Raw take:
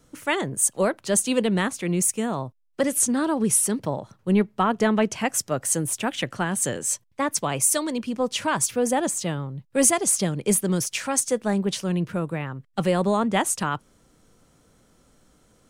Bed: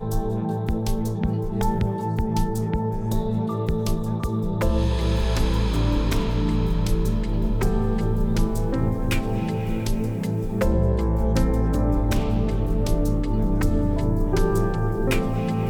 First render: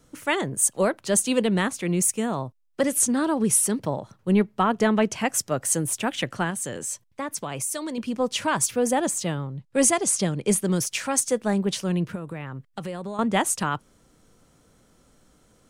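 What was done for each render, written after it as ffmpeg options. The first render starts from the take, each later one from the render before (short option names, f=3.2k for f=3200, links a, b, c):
-filter_complex "[0:a]asettb=1/sr,asplit=3[a][b][c];[a]atrim=end=6.504[d];[b]atrim=start=6.5:end=7.98,asetpts=PTS-STARTPTS,afade=t=in:d=0.004:c=qsin,afade=t=out:st=1.476:d=0.004:c=qsin,acompressor=threshold=-29dB:ratio=2.5:attack=3.2:release=140:knee=1:detection=peak[e];[c]atrim=start=7.976[f];[d][e]acrossfade=d=0.004:c1=hsin:c2=qsin[g];[g][f]acrossfade=d=0.004:c1=qsin:c2=hsin,asettb=1/sr,asplit=3[h][i][j];[h]atrim=end=9.474[k];[i]atrim=start=9.47:end=10.61,asetpts=PTS-STARTPTS,afade=t=in:d=0.004:c=qsin,afade=t=out:st=1.136:d=0.004:c=qsin,lowpass=10k[l];[j]atrim=start=10.606[m];[k][l]acrossfade=d=0.004:c1=hsin:c2=qsin[n];[n][m]acrossfade=d=0.004:c1=qsin:c2=hsin,asettb=1/sr,asplit=3[o][p][q];[o]atrim=end=12.154[r];[p]atrim=start=12.15:end=13.19,asetpts=PTS-STARTPTS,afade=t=in:d=0.004:c=qsin,afade=t=out:st=1.036:d=0.004:c=qsin,acompressor=threshold=-29dB:ratio=6:attack=3.2:release=140:knee=1:detection=peak[s];[q]atrim=start=13.186[t];[r][s]acrossfade=d=0.004:c1=hsin:c2=qsin[u];[u][t]acrossfade=d=0.004:c1=qsin:c2=hsin"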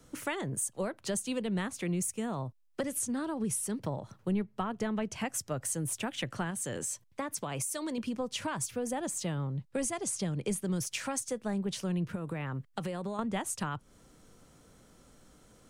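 -filter_complex "[0:a]acrossover=split=120[a][b];[b]acompressor=threshold=-33dB:ratio=5[c];[a][c]amix=inputs=2:normalize=0"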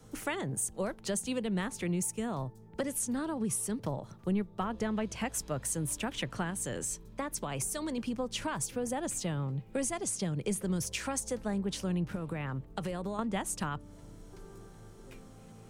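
-filter_complex "[1:a]volume=-29.5dB[a];[0:a][a]amix=inputs=2:normalize=0"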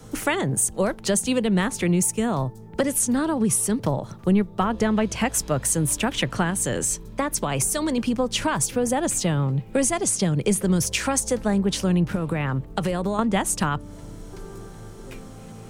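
-af "volume=11.5dB"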